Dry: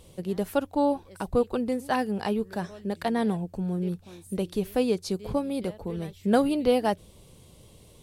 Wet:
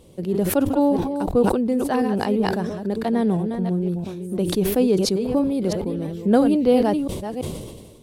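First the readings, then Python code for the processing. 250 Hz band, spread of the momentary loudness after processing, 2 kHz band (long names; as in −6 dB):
+8.0 dB, 10 LU, +2.5 dB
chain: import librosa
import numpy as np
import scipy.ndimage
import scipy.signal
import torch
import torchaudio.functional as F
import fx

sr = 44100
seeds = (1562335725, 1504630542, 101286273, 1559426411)

y = fx.reverse_delay(x, sr, ms=337, wet_db=-8.5)
y = fx.peak_eq(y, sr, hz=300.0, db=9.0, octaves=2.2)
y = fx.sustainer(y, sr, db_per_s=40.0)
y = y * librosa.db_to_amplitude(-2.0)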